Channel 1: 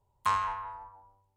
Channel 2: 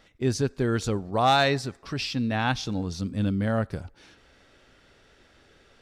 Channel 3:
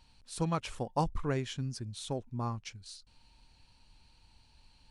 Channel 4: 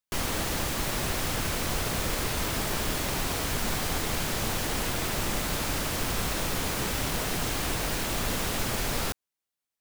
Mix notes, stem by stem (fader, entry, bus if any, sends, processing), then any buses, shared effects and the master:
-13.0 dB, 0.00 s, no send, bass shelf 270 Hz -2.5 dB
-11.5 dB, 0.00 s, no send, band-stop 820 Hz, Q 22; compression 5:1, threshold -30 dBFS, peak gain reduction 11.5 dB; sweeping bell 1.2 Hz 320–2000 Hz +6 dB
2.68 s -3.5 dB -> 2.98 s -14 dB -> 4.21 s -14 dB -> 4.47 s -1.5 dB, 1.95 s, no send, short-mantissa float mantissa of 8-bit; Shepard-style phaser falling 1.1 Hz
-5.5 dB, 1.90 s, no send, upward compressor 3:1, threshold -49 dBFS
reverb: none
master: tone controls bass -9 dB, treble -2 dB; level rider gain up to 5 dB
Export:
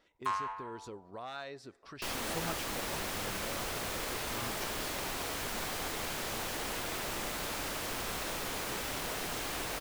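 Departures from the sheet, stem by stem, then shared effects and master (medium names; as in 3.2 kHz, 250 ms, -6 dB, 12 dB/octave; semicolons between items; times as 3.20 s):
stem 1 -13.0 dB -> -5.5 dB; stem 4: missing upward compressor 3:1, threshold -49 dBFS; master: missing level rider gain up to 5 dB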